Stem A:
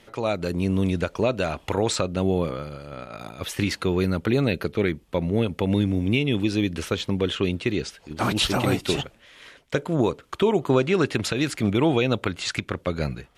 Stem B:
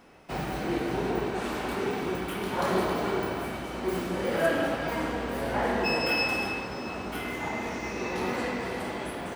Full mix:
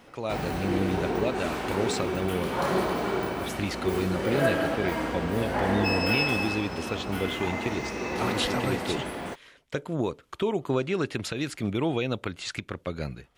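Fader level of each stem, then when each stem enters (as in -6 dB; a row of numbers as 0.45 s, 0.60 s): -6.5 dB, +0.5 dB; 0.00 s, 0.00 s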